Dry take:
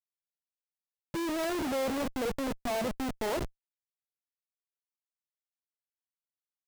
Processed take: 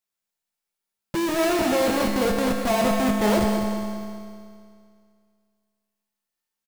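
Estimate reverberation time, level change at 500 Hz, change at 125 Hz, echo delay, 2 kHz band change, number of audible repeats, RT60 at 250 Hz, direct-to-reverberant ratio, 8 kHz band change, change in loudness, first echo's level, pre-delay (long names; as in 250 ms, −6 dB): 2.3 s, +10.5 dB, +12.5 dB, 198 ms, +10.5 dB, 3, 2.3 s, 0.0 dB, +10.5 dB, +10.5 dB, −9.5 dB, 4 ms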